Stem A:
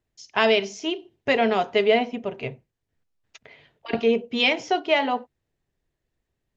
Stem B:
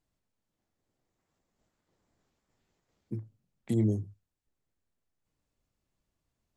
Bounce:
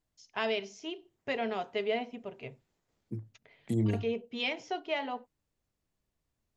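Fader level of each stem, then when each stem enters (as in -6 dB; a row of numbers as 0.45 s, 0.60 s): -12.5 dB, -2.0 dB; 0.00 s, 0.00 s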